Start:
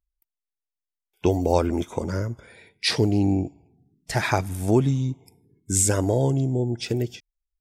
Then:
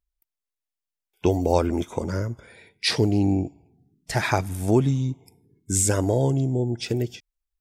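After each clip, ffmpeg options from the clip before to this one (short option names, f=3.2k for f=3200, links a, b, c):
-af "deesser=0.3"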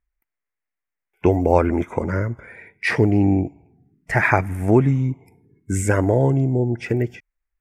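-af "highshelf=f=2.8k:t=q:w=3:g=-11,volume=4dB"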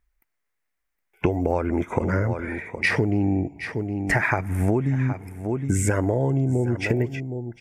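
-af "aecho=1:1:765:0.133,acompressor=threshold=-25dB:ratio=12,volume=6.5dB"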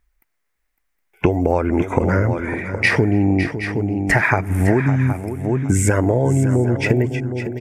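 -af "aecho=1:1:556:0.282,volume=5.5dB"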